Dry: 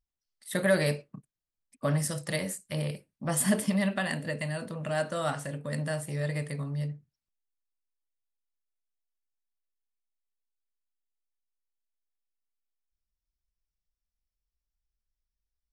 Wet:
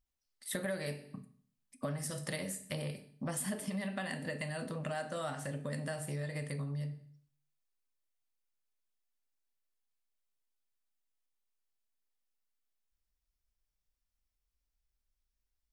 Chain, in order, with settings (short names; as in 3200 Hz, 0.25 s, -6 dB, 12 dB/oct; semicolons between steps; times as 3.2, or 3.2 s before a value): on a send at -9 dB: reverb RT60 0.50 s, pre-delay 4 ms; on the sum: compressor 5:1, threshold -37 dBFS, peak gain reduction 16.5 dB; gain +1 dB